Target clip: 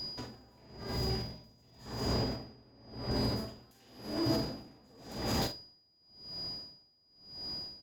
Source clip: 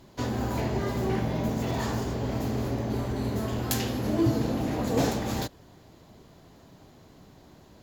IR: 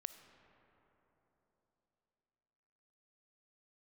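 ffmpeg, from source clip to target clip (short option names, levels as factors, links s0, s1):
-filter_complex "[0:a]asettb=1/sr,asplit=3[s0][s1][s2];[s0]atrim=end=2.364[s3];[s1]atrim=start=2.36:end=3.11,asetpts=PTS-STARTPTS,afade=t=in:d=0.004:c=qsin,afade=t=out:st=0.746:d=0.004:c=qsin,acrossover=split=3700[s4][s5];[s5]acompressor=threshold=0.00112:ratio=4:attack=1:release=60[s6];[s4][s6]amix=inputs=2:normalize=0[s7];[s2]atrim=start=3.106[s8];[s3][s7]acrossfade=d=0.004:c1=hsin:c2=qsin[s9];[s9][s8]acrossfade=d=0.004:c1=qsin:c2=hsin,asettb=1/sr,asplit=3[s10][s11][s12];[s10]atrim=end=3.714[s13];[s11]atrim=start=3.71:end=4.36,asetpts=PTS-STARTPTS,afade=t=in:d=0.004:c=qsin,afade=t=out:st=0.646:d=0.004:c=qsin,lowshelf=f=200:g=-9[s14];[s12]atrim=start=4.356[s15];[s13][s14]acrossfade=d=0.004:c1=hsin:c2=qsin[s16];[s16][s15]acrossfade=d=0.004:c1=qsin:c2=hsin,alimiter=limit=0.075:level=0:latency=1:release=33,asettb=1/sr,asplit=3[s17][s18][s19];[s17]atrim=end=0.924[s20];[s18]atrim=start=0.92:end=1.86,asetpts=PTS-STARTPTS,afade=t=in:d=0.004:c=qsin,afade=t=out:st=0.936:d=0.004:c=qsin,acrossover=split=160|3000[s21][s22][s23];[s22]acompressor=threshold=0.0126:ratio=6[s24];[s21][s24][s23]amix=inputs=3:normalize=0[s25];[s19]atrim=start=1.856[s26];[s20][s25]acrossfade=d=0.004:c1=hsin:c2=qsin[s27];[s27][s26]acrossfade=d=0.004:c1=qsin:c2=hsin,asoftclip=type=tanh:threshold=0.0422,aeval=exprs='val(0)+0.01*sin(2*PI*4900*n/s)':c=same,asplit=2[s28][s29];[s29]adelay=47,volume=0.398[s30];[s28][s30]amix=inputs=2:normalize=0[s31];[1:a]atrim=start_sample=2205,afade=t=out:st=0.15:d=0.01,atrim=end_sample=7056[s32];[s31][s32]afir=irnorm=-1:irlink=0,aeval=exprs='val(0)*pow(10,-31*(0.5-0.5*cos(2*PI*0.93*n/s))/20)':c=same,volume=2.24"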